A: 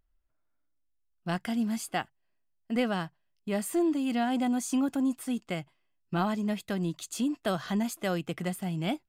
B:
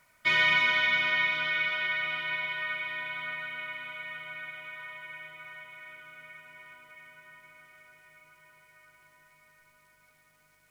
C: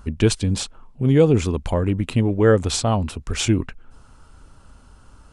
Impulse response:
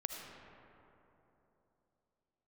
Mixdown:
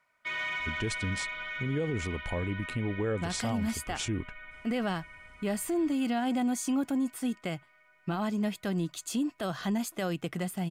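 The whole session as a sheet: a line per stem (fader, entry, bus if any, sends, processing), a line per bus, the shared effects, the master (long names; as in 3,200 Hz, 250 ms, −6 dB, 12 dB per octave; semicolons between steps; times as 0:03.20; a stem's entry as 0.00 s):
+0.5 dB, 1.95 s, no send, no processing
−10.0 dB, 0.00 s, no send, mid-hump overdrive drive 11 dB, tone 1,600 Hz, clips at −12.5 dBFS
−11.0 dB, 0.60 s, no send, no processing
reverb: not used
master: brickwall limiter −23 dBFS, peak gain reduction 8 dB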